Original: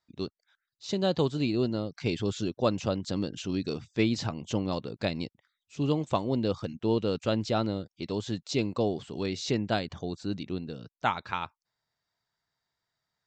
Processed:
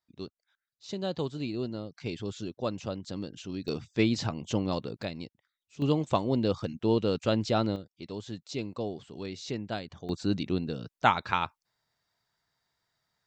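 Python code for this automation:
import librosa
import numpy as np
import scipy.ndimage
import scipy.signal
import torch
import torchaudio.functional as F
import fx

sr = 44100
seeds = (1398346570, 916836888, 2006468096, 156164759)

y = fx.gain(x, sr, db=fx.steps((0.0, -6.0), (3.68, 0.5), (5.03, -6.0), (5.82, 1.0), (7.76, -6.5), (10.09, 4.5)))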